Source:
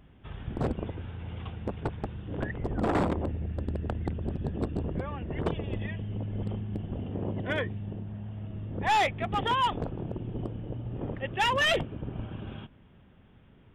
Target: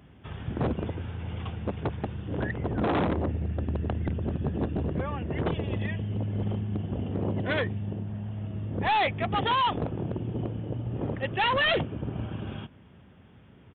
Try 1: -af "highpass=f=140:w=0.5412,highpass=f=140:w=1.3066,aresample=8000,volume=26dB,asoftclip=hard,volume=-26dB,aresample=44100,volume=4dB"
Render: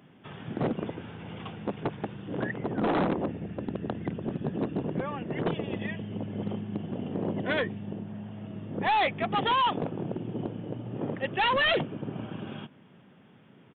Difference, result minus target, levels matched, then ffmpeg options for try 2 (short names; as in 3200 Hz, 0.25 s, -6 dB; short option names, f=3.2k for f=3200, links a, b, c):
125 Hz band -5.5 dB
-af "highpass=f=63:w=0.5412,highpass=f=63:w=1.3066,aresample=8000,volume=26dB,asoftclip=hard,volume=-26dB,aresample=44100,volume=4dB"